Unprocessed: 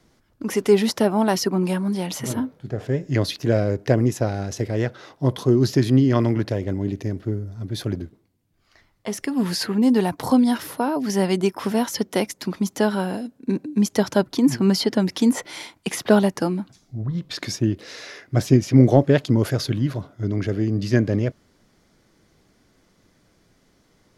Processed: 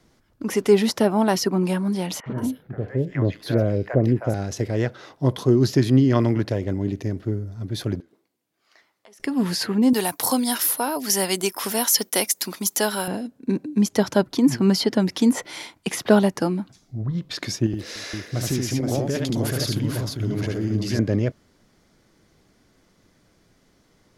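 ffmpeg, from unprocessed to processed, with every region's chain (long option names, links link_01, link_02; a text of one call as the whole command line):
ffmpeg -i in.wav -filter_complex "[0:a]asettb=1/sr,asplit=3[link_01][link_02][link_03];[link_01]atrim=end=2.204[link_04];[link_02]atrim=start=2.2:end=4.34,asetpts=PTS-STARTPTS,afade=type=in:duration=0.004:curve=qsin,afade=type=out:start_time=2.136:duration=0.004:curve=qsin,equalizer=frequency=6600:width=0.69:gain=-12,acrossover=split=750|2600[link_05][link_06][link_07];[link_05]adelay=60[link_08];[link_07]adelay=180[link_09];[link_08][link_06][link_09]amix=inputs=3:normalize=0,atrim=end_sample=94374[link_10];[link_03]atrim=start=4.336[link_11];[link_04][link_10]acrossfade=duration=0.004:curve1=hsin:curve2=qsin[link_12];[link_12][link_11]acrossfade=duration=0.004:curve1=qsin:curve2=hsin,asettb=1/sr,asplit=3[link_13][link_14][link_15];[link_13]atrim=end=8.004[link_16];[link_14]atrim=start=8:end=9.2,asetpts=PTS-STARTPTS,afade=type=in:duration=0.004:curve=qsin,afade=type=out:start_time=1.196:duration=0.004:curve=qsin,highpass=370,acompressor=threshold=-47dB:ratio=16:attack=3.2:release=140:knee=1:detection=peak[link_17];[link_15]atrim=start=9.196[link_18];[link_16][link_17]acrossfade=duration=0.004:curve1=hsin:curve2=qsin[link_19];[link_19][link_18]acrossfade=duration=0.004:curve1=qsin:curve2=hsin,asettb=1/sr,asplit=3[link_20][link_21][link_22];[link_20]atrim=end=9.934[link_23];[link_21]atrim=start=9.93:end=13.08,asetpts=PTS-STARTPTS,afade=type=in:duration=0.004:curve=qsin,afade=type=out:start_time=3.146:duration=0.004:curve=qsin,aemphasis=mode=production:type=riaa,agate=range=-33dB:threshold=-43dB:ratio=3:release=100:detection=peak[link_24];[link_22]atrim=start=13.076[link_25];[link_23][link_24]acrossfade=duration=0.004:curve1=hsin:curve2=qsin[link_26];[link_26][link_25]acrossfade=duration=0.004:curve1=qsin:curve2=hsin,asettb=1/sr,asplit=3[link_27][link_28][link_29];[link_27]atrim=end=17.664[link_30];[link_28]atrim=start=17.66:end=20.99,asetpts=PTS-STARTPTS,afade=type=in:duration=0.004:curve=qsin,afade=type=out:start_time=3.326:duration=0.004:curve=qsin,highshelf=frequency=6600:gain=9.5,acompressor=threshold=-23dB:ratio=3:attack=3.2:release=140:knee=1:detection=peak,aecho=1:1:74|297|474:0.708|0.112|0.562,atrim=end_sample=146853[link_31];[link_29]atrim=start=20.986[link_32];[link_30][link_31]acrossfade=duration=0.004:curve1=hsin:curve2=qsin[link_33];[link_33][link_32]acrossfade=duration=0.004:curve1=qsin:curve2=hsin" out.wav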